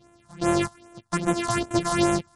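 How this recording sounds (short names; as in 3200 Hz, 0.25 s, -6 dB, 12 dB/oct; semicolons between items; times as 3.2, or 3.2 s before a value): a buzz of ramps at a fixed pitch in blocks of 128 samples; phasing stages 4, 2.5 Hz, lowest notch 380–4700 Hz; MP3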